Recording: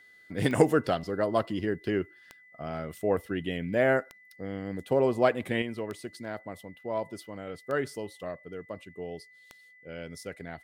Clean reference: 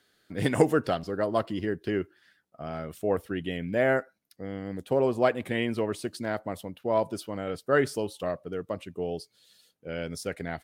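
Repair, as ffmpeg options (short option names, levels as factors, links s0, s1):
-af "adeclick=t=4,bandreject=f=2000:w=30,asetnsamples=n=441:p=0,asendcmd='5.62 volume volume 6.5dB',volume=1"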